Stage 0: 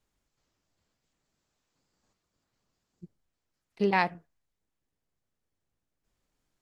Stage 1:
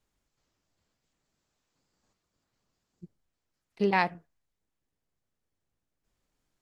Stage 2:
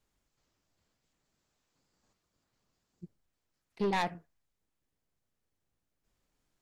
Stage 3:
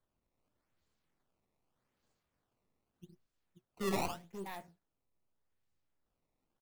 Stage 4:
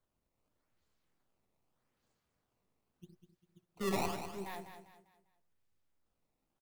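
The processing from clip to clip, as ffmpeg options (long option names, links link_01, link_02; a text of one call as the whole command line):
ffmpeg -i in.wav -af anull out.wav
ffmpeg -i in.wav -af "asoftclip=type=tanh:threshold=-25dB" out.wav
ffmpeg -i in.wav -filter_complex "[0:a]flanger=delay=7.7:depth=6.8:regen=54:speed=1.6:shape=sinusoidal,asplit=2[link_01][link_02];[link_02]aecho=0:1:62|92|533:0.398|0.376|0.376[link_03];[link_01][link_03]amix=inputs=2:normalize=0,acrusher=samples=16:mix=1:aa=0.000001:lfo=1:lforange=25.6:lforate=0.83,volume=-2dB" out.wav
ffmpeg -i in.wav -af "aecho=1:1:199|398|597|796:0.355|0.128|0.046|0.0166" out.wav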